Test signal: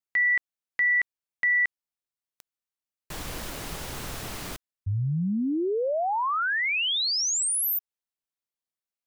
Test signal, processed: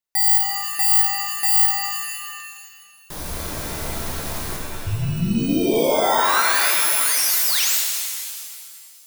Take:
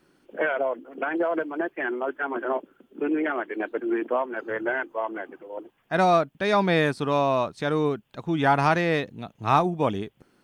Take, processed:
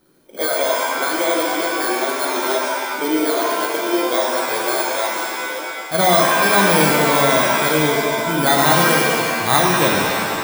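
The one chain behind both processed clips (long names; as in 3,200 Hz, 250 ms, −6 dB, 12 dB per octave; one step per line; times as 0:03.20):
samples in bit-reversed order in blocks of 16 samples
hum removal 46.4 Hz, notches 9
reverb with rising layers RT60 1.9 s, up +7 semitones, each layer −2 dB, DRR −0.5 dB
level +3 dB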